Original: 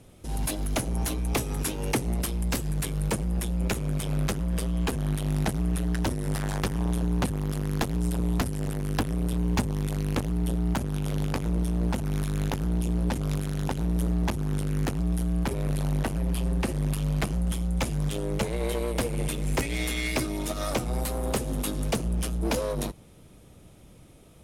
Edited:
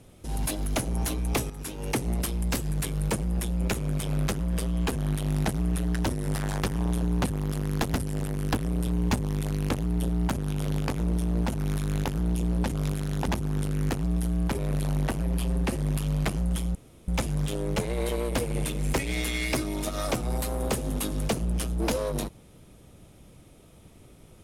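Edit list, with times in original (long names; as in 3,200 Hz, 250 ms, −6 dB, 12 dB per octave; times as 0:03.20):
0:01.50–0:02.07: fade in, from −12.5 dB
0:07.94–0:08.40: remove
0:13.74–0:14.24: remove
0:17.71: splice in room tone 0.33 s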